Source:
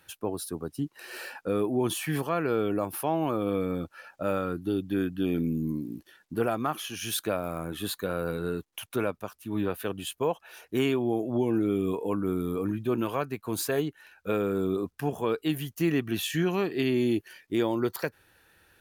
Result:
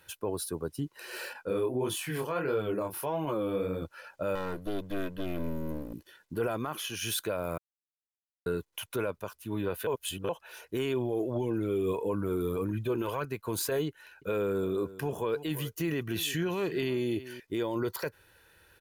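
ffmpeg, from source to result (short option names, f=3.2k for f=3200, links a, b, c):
-filter_complex "[0:a]asettb=1/sr,asplit=3[a][b][c];[a]atrim=end=1.334[d];[b]atrim=start=1.33:end=3.82,asetpts=PTS-STARTPTS,afade=t=in:d=0.004:c=qsin,afade=t=out:st=2.486:d=0.004:c=qsin,flanger=delay=19.5:depth=7.4:speed=1.6[e];[c]atrim=start=3.816[f];[d][e]acrossfade=d=0.004:c1=hsin:c2=qsin[g];[g][f]acrossfade=d=0.004:c1=qsin:c2=hsin,asettb=1/sr,asplit=3[h][i][j];[h]atrim=end=4.354[k];[i]atrim=start=4.35:end=5.94,asetpts=PTS-STARTPTS,afade=t=in:d=0.004:c=qsin,afade=t=out:st=1.586:d=0.004:c=qsin,aeval=exprs='clip(val(0),-1,0.00944)':c=same[l];[j]atrim=start=5.936[m];[k][l]acrossfade=d=0.004:c1=hsin:c2=qsin[n];[n][m]acrossfade=d=0.004:c1=qsin:c2=hsin,asettb=1/sr,asplit=3[o][p][q];[o]atrim=end=10.934[r];[p]atrim=start=10.93:end=13.25,asetpts=PTS-STARTPTS,afade=t=in:d=0.004:c=qsin,afade=t=out:st=2.316:d=0.004:c=qsin,aphaser=in_gain=1:out_gain=1:delay=2.9:decay=0.39:speed=1.7:type=triangular[s];[q]atrim=start=13.246[t];[r][s]acrossfade=d=0.004:c1=hsin:c2=qsin[u];[u][t]acrossfade=d=0.004:c1=qsin:c2=hsin,asettb=1/sr,asplit=3[v][w][x];[v]atrim=end=13.884[y];[w]atrim=start=13.88:end=17.4,asetpts=PTS-STARTPTS,afade=t=in:d=0.004:c=qsin,afade=t=out:st=3.516:d=0.004:c=qsin,aecho=1:1:335:0.112,atrim=end_sample=155232[z];[x]atrim=start=17.396[aa];[y][z]acrossfade=d=0.004:c1=hsin:c2=qsin[ab];[ab][aa]acrossfade=d=0.004:c1=qsin:c2=hsin,asplit=5[ac][ad][ae][af][ag];[ac]atrim=end=7.58,asetpts=PTS-STARTPTS,afade=t=out:st=7.576:d=0.004:c=hsin[ah];[ad]atrim=start=7.58:end=8.46,asetpts=PTS-STARTPTS,volume=0[ai];[ae]atrim=start=8.46:end=9.872,asetpts=PTS-STARTPTS,afade=t=in:d=0.004:c=hsin[aj];[af]atrim=start=9.868:end=10.292,asetpts=PTS-STARTPTS,areverse[ak];[ag]atrim=start=10.288[al];[ah][ai][aj]concat=n=3:v=0:a=1[am];[am][ak]acrossfade=d=0.004:c1=hsin:c2=hsin[an];[an][al]acrossfade=d=0.004:c1=hsin:c2=hsin,alimiter=limit=-22.5dB:level=0:latency=1:release=18,aecho=1:1:2:0.37"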